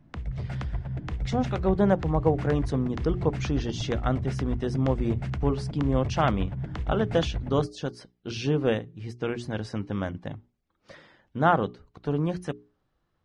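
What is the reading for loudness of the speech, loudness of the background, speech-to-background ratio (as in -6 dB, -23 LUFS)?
-28.5 LUFS, -33.5 LUFS, 5.0 dB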